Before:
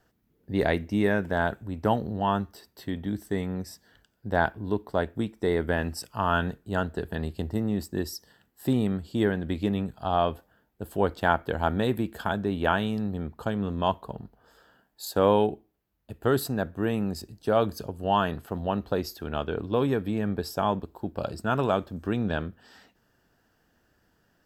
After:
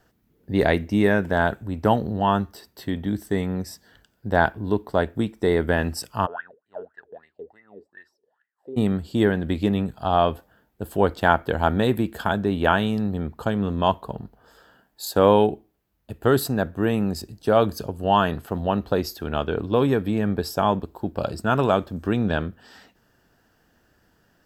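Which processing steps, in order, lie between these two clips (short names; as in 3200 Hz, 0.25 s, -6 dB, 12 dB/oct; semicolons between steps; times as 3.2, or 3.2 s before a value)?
6.25–8.76 wah 4.4 Hz -> 1.8 Hz 410–2000 Hz, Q 14; gain +5 dB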